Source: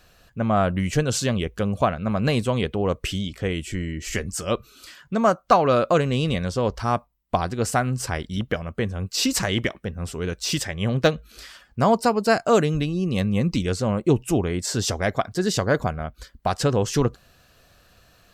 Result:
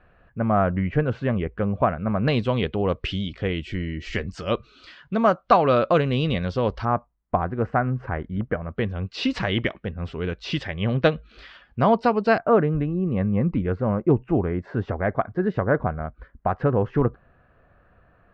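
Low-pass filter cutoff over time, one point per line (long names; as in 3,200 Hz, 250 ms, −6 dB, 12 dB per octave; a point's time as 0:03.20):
low-pass filter 24 dB per octave
2,100 Hz
from 0:02.28 4,100 Hz
from 0:06.85 1,800 Hz
from 0:08.76 3,500 Hz
from 0:12.38 1,800 Hz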